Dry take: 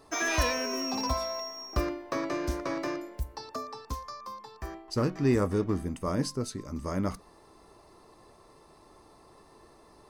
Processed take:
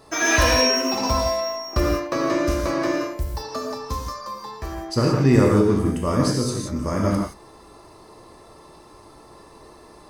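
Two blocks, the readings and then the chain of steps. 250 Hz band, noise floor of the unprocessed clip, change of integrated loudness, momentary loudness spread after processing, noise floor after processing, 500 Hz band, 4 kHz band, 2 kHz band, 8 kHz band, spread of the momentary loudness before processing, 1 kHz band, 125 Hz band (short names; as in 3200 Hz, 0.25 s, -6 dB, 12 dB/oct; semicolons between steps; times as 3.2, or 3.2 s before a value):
+10.0 dB, -57 dBFS, +10.5 dB, 14 LU, -48 dBFS, +10.5 dB, +11.0 dB, +10.5 dB, +10.5 dB, 13 LU, +9.5 dB, +11.0 dB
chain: non-linear reverb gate 0.2 s flat, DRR -1.5 dB; gain +6 dB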